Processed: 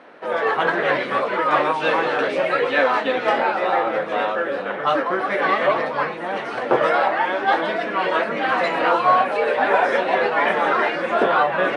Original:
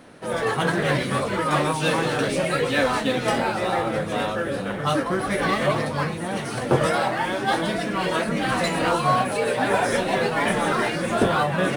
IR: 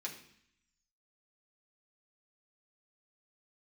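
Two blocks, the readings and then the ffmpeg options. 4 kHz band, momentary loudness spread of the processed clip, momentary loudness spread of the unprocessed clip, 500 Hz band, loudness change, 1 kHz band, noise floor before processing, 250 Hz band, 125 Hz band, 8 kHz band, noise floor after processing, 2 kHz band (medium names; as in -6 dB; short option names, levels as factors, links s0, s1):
-1.5 dB, 5 LU, 5 LU, +3.5 dB, +3.0 dB, +5.0 dB, -29 dBFS, -4.0 dB, -13.5 dB, under -15 dB, -29 dBFS, +4.0 dB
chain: -af "highpass=450,lowpass=2400,volume=1.88"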